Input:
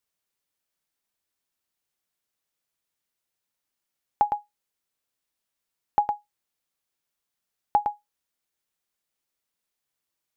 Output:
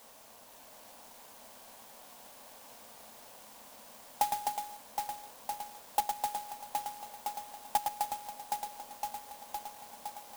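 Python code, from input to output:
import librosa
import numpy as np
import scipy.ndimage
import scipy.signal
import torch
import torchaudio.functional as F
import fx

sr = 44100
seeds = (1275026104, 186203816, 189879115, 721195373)

p1 = x + 0.5 * 10.0 ** (-29.5 / 20.0) * np.sign(x)
p2 = scipy.signal.sosfilt(scipy.signal.butter(16, 210.0, 'highpass', fs=sr, output='sos'), p1)
p3 = fx.tilt_eq(p2, sr, slope=-2.5)
p4 = fx.fixed_phaser(p3, sr, hz=840.0, stages=4)
p5 = fx.notch_comb(p4, sr, f0_hz=1300.0)
p6 = p5 + fx.echo_alternate(p5, sr, ms=256, hz=1700.0, feedback_pct=87, wet_db=-3.5, dry=0)
p7 = fx.clock_jitter(p6, sr, seeds[0], jitter_ms=0.076)
y = p7 * 10.0 ** (-8.5 / 20.0)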